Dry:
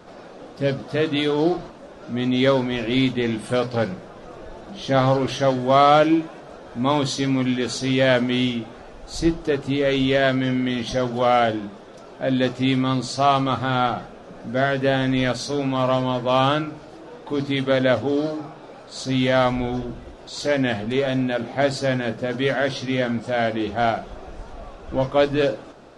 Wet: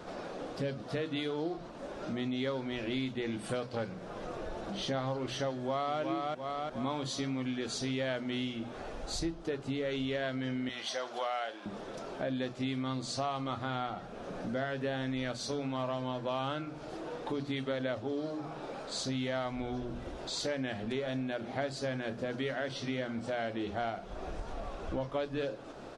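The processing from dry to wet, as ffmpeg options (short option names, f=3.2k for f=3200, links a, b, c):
-filter_complex "[0:a]asplit=2[a][b];[b]afade=t=in:st=5.52:d=0.01,afade=t=out:st=5.99:d=0.01,aecho=0:1:350|700|1050|1400|1750:0.595662|0.238265|0.0953059|0.0381224|0.015249[c];[a][c]amix=inputs=2:normalize=0,asettb=1/sr,asplit=3[d][e][f];[d]atrim=end=10.694[g];[e]atrim=start=10.69:end=11.66,asetpts=PTS-STARTPTS,afade=t=in:d=0.004:c=qsin,afade=t=out:st=0.966:d=0.004:c=qsin,highpass=700[h];[f]atrim=start=11.656[i];[g][h]acrossfade=d=0.004:c1=hsin:c2=qsin[j];[j][i]acrossfade=d=0.004:c1=qsin:c2=hsin,bandreject=f=60:t=h:w=6,bandreject=f=120:t=h:w=6,bandreject=f=180:t=h:w=6,bandreject=f=240:t=h:w=6,acompressor=threshold=-35dB:ratio=4"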